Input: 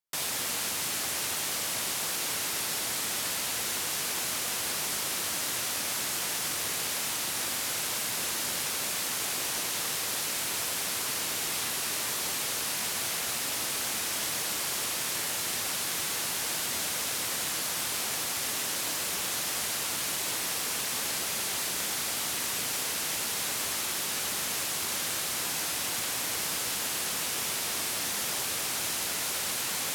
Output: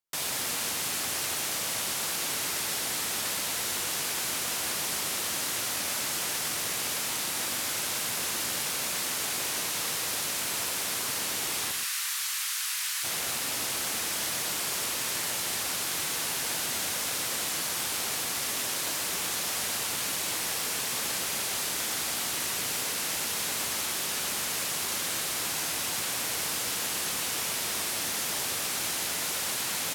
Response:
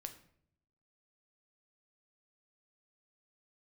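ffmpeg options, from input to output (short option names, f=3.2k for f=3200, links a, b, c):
-filter_complex "[0:a]asplit=3[a][b][c];[a]afade=t=out:st=11.71:d=0.02[d];[b]highpass=f=1.2k:w=0.5412,highpass=f=1.2k:w=1.3066,afade=t=in:st=11.71:d=0.02,afade=t=out:st=13.03:d=0.02[e];[c]afade=t=in:st=13.03:d=0.02[f];[d][e][f]amix=inputs=3:normalize=0,asplit=2[g][h];[h]adelay=122.4,volume=-7dB,highshelf=f=4k:g=-2.76[i];[g][i]amix=inputs=2:normalize=0"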